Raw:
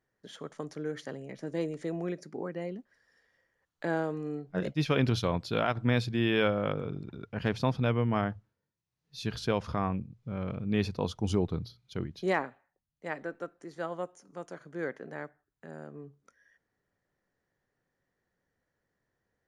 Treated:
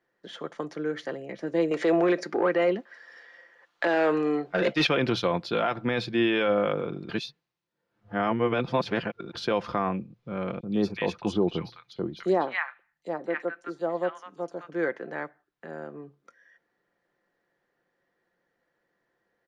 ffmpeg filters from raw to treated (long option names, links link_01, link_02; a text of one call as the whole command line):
ffmpeg -i in.wav -filter_complex "[0:a]asettb=1/sr,asplit=3[link_01][link_02][link_03];[link_01]atrim=end=1.714[link_04];[link_02]atrim=start=1.71:end=4.87,asetpts=PTS-STARTPTS,afade=type=in:duration=0.004:curve=qsin,afade=type=out:start_time=3.156:duration=0.004:curve=qsin,asplit=2[link_05][link_06];[link_06]highpass=frequency=720:poles=1,volume=19dB,asoftclip=type=tanh:threshold=-17dB[link_07];[link_05][link_07]amix=inputs=2:normalize=0,lowpass=frequency=6100:poles=1,volume=-6dB[link_08];[link_03]atrim=start=4.866[link_09];[link_04][link_08]acrossfade=duration=0.004:curve1=hsin:curve2=qsin[link_10];[link_10][link_09]acrossfade=duration=0.004:curve1=qsin:curve2=hsin,asettb=1/sr,asplit=3[link_11][link_12][link_13];[link_11]atrim=end=10.604[link_14];[link_12]atrim=start=10.6:end=14.74,asetpts=PTS-STARTPTS,afade=type=in:duration=0.004:curve=qsin,afade=type=out:start_time=4.136:duration=0.004:curve=qsin,acrossover=split=1200|3800[link_15][link_16][link_17];[link_15]adelay=30[link_18];[link_16]adelay=240[link_19];[link_18][link_19][link_17]amix=inputs=3:normalize=0,atrim=end_sample=182574[link_20];[link_13]atrim=start=14.736[link_21];[link_14][link_20]acrossfade=duration=0.004:curve1=hsin:curve2=qsin[link_22];[link_22][link_21]acrossfade=duration=0.004:curve1=qsin:curve2=hsin,asplit=3[link_23][link_24][link_25];[link_23]atrim=end=7.092[link_26];[link_24]atrim=start=7.088:end=9.352,asetpts=PTS-STARTPTS,areverse[link_27];[link_25]atrim=start=9.348[link_28];[link_26][link_27]acrossfade=duration=0.004:curve1=hsin:curve2=hsin[link_29];[link_29][link_28]acrossfade=duration=0.004:curve1=hsin:curve2=hsin,acrossover=split=220 4700:gain=0.178 1 0.178[link_30][link_31][link_32];[link_30][link_31][link_32]amix=inputs=3:normalize=0,aecho=1:1:5.8:0.34,alimiter=limit=-21.5dB:level=0:latency=1:release=16,volume=7dB" out.wav